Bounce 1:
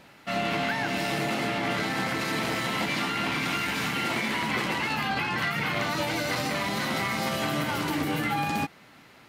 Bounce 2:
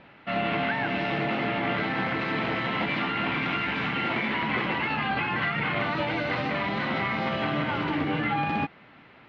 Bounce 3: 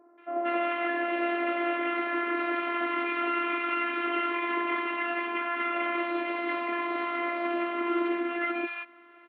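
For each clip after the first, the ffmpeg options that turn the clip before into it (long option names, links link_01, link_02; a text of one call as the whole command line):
ffmpeg -i in.wav -af "lowpass=frequency=3200:width=0.5412,lowpass=frequency=3200:width=1.3066,volume=1dB" out.wav
ffmpeg -i in.wav -filter_complex "[0:a]afftfilt=real='hypot(re,im)*cos(PI*b)':imag='0':win_size=512:overlap=0.75,highpass=frequency=250:width=0.5412,highpass=frequency=250:width=1.3066,equalizer=frequency=340:width_type=q:width=4:gain=3,equalizer=frequency=550:width_type=q:width=4:gain=3,equalizer=frequency=1200:width_type=q:width=4:gain=8,lowpass=frequency=3100:width=0.5412,lowpass=frequency=3100:width=1.3066,acrossover=split=1000[link_01][link_02];[link_02]adelay=180[link_03];[link_01][link_03]amix=inputs=2:normalize=0" out.wav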